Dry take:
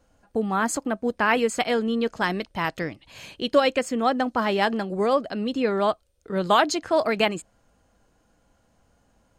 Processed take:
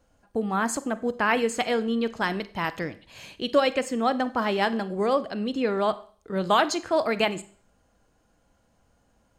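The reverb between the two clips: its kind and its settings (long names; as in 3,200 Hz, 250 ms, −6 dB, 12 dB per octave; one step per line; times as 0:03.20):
four-comb reverb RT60 0.45 s, combs from 31 ms, DRR 14.5 dB
level −2 dB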